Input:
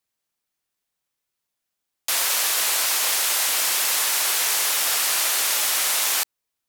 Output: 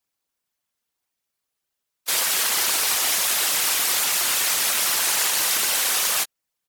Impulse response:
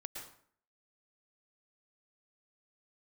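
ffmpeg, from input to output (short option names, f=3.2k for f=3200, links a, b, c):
-filter_complex "[0:a]aeval=exprs='val(0)*sin(2*PI*180*n/s)':c=same,asplit=3[a][b][c];[b]asetrate=35002,aresample=44100,atempo=1.25992,volume=-8dB[d];[c]asetrate=52444,aresample=44100,atempo=0.840896,volume=-17dB[e];[a][d][e]amix=inputs=3:normalize=0,afftfilt=real='hypot(re,im)*cos(2*PI*random(0))':imag='hypot(re,im)*sin(2*PI*random(1))':win_size=512:overlap=0.75,volume=8.5dB"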